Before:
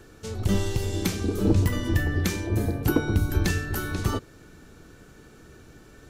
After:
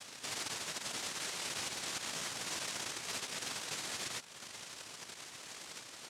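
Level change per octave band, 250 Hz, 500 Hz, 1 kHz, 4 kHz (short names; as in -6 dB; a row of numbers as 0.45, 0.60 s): -26.5, -19.0, -8.0, -0.5 dB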